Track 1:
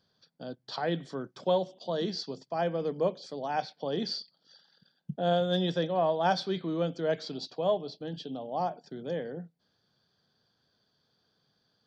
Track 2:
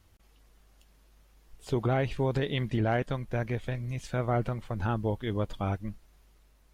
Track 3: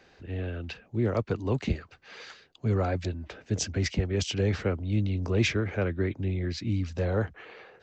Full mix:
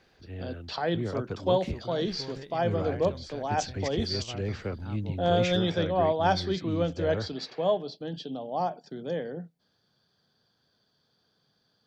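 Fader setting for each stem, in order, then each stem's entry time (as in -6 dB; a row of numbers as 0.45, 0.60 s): +2.0, -14.0, -6.0 dB; 0.00, 0.00, 0.00 s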